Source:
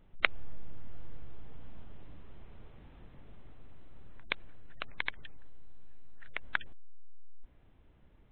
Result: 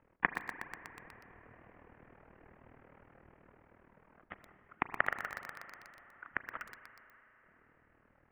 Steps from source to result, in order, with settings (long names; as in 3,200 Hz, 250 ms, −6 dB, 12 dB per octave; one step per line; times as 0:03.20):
amplitude modulation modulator 39 Hz, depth 90%
convolution reverb RT60 4.0 s, pre-delay 33 ms, DRR 10.5 dB
single-sideband voice off tune −350 Hz 430–2,500 Hz
feedback echo at a low word length 122 ms, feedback 80%, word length 8 bits, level −9.5 dB
level +8.5 dB